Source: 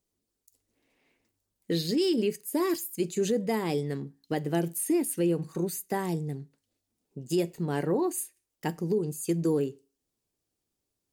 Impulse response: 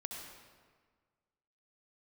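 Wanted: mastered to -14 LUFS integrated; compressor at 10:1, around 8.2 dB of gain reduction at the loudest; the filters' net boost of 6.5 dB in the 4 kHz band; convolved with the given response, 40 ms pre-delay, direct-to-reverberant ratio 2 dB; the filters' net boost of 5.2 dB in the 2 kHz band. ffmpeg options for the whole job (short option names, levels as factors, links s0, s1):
-filter_complex "[0:a]equalizer=f=2000:t=o:g=4.5,equalizer=f=4000:t=o:g=7,acompressor=threshold=0.0316:ratio=10,asplit=2[s0][s1];[1:a]atrim=start_sample=2205,adelay=40[s2];[s1][s2]afir=irnorm=-1:irlink=0,volume=0.891[s3];[s0][s3]amix=inputs=2:normalize=0,volume=8.91"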